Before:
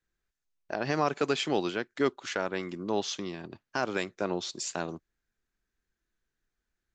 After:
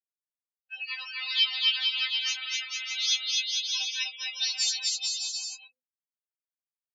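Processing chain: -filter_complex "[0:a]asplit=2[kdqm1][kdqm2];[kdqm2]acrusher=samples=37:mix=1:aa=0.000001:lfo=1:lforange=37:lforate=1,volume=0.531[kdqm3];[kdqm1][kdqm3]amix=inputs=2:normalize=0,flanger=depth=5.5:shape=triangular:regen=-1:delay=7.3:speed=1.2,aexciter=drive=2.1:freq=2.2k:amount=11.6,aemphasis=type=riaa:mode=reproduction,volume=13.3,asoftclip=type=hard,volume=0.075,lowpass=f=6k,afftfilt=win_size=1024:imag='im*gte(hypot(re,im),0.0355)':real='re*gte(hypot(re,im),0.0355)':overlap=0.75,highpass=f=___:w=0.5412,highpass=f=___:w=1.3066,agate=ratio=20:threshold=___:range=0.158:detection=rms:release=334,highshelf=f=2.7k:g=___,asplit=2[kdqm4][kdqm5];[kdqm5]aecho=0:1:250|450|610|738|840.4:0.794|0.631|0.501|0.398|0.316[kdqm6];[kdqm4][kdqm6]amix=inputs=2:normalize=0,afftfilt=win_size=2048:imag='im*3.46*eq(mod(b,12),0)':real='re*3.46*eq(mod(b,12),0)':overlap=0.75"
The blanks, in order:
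1.4k, 1.4k, 0.002, 8.5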